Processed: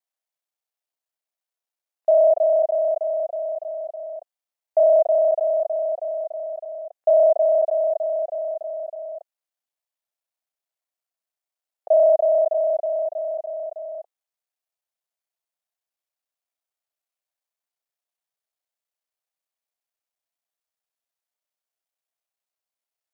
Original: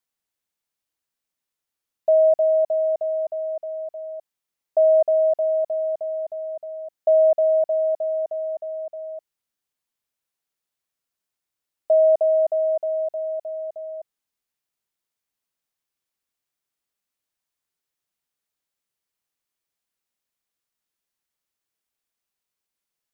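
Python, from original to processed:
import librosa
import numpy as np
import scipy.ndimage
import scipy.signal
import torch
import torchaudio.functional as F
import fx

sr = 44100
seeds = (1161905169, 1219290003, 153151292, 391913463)

y = fx.local_reverse(x, sr, ms=32.0)
y = scipy.signal.sosfilt(scipy.signal.butter(2, 500.0, 'highpass', fs=sr, output='sos'), y)
y = fx.peak_eq(y, sr, hz=660.0, db=9.0, octaves=0.65)
y = y * 10.0 ** (-6.0 / 20.0)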